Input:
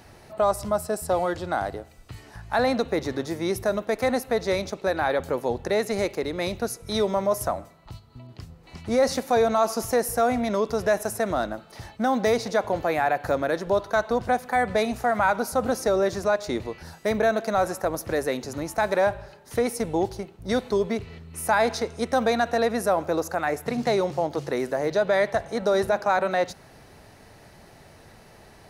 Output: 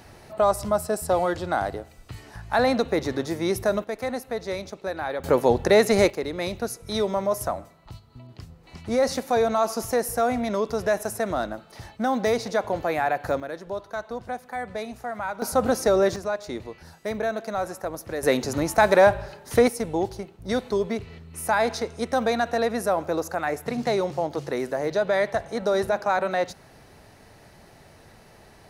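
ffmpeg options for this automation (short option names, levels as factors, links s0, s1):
-af "asetnsamples=n=441:p=0,asendcmd='3.84 volume volume -5.5dB;5.24 volume volume 7dB;6.1 volume volume -1dB;13.4 volume volume -9dB;15.42 volume volume 2.5dB;16.16 volume volume -5dB;18.23 volume volume 6dB;19.68 volume volume -1dB',volume=1.19"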